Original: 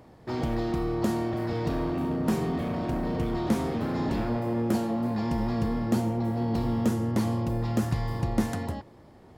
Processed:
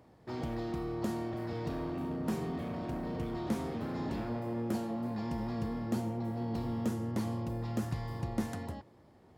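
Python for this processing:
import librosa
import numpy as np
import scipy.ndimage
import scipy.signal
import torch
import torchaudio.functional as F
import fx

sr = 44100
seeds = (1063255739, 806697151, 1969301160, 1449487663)

y = scipy.signal.sosfilt(scipy.signal.butter(2, 48.0, 'highpass', fs=sr, output='sos'), x)
y = y * librosa.db_to_amplitude(-8.0)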